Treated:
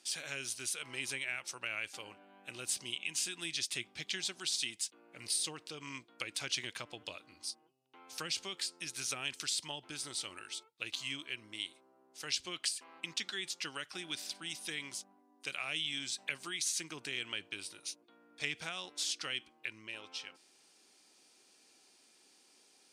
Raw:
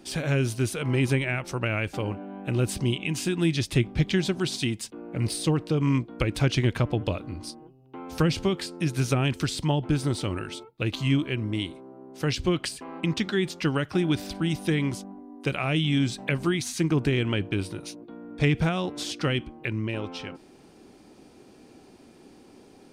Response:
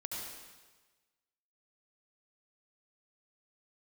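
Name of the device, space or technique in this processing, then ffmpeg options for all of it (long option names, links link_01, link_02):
piezo pickup straight into a mixer: -af "lowpass=8300,aderivative,volume=2.5dB"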